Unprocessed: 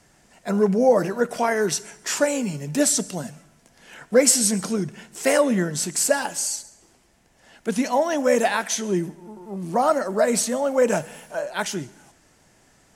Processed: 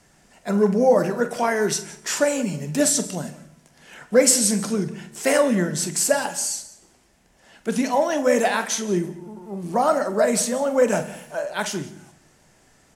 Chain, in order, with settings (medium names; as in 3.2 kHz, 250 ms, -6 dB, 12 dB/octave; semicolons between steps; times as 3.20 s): doubling 45 ms -13 dB; delay 175 ms -20 dB; on a send at -13 dB: reverberation RT60 0.70 s, pre-delay 5 ms